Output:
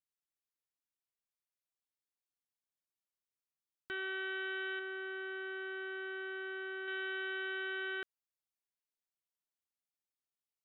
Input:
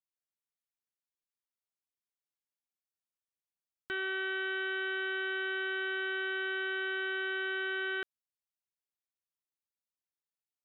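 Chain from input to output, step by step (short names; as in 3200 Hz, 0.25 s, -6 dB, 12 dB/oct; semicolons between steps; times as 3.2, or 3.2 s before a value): 4.79–6.88 high shelf 2000 Hz -10.5 dB; gain -4.5 dB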